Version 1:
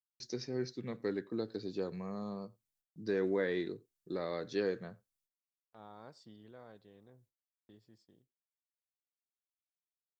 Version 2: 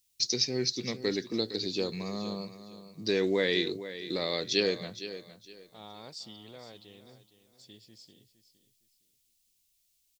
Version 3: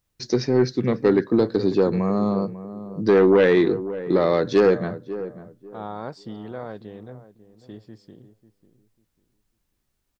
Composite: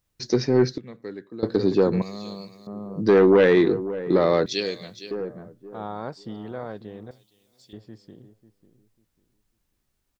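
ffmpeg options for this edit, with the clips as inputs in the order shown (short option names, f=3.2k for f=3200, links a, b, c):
-filter_complex "[1:a]asplit=3[a][b][c];[2:a]asplit=5[d][e][f][g][h];[d]atrim=end=0.782[i];[0:a]atrim=start=0.778:end=1.432[j];[e]atrim=start=1.428:end=2.022[k];[a]atrim=start=2.018:end=2.672[l];[f]atrim=start=2.668:end=4.462[m];[b]atrim=start=4.458:end=5.112[n];[g]atrim=start=5.108:end=7.112[o];[c]atrim=start=7.108:end=7.732[p];[h]atrim=start=7.728[q];[i][j]acrossfade=d=0.004:c1=hsin:c2=hsin[r];[r][k]acrossfade=d=0.004:c1=hsin:c2=hsin[s];[s][l]acrossfade=d=0.004:c1=hsin:c2=hsin[t];[t][m]acrossfade=d=0.004:c1=hsin:c2=hsin[u];[u][n]acrossfade=d=0.004:c1=hsin:c2=hsin[v];[v][o]acrossfade=d=0.004:c1=hsin:c2=hsin[w];[w][p]acrossfade=d=0.004:c1=hsin:c2=hsin[x];[x][q]acrossfade=d=0.004:c1=hsin:c2=hsin"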